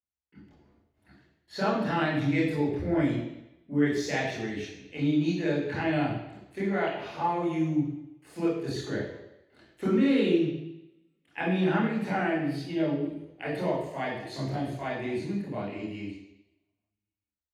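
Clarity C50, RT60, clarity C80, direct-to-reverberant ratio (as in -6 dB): 2.0 dB, 0.90 s, 5.5 dB, -7.5 dB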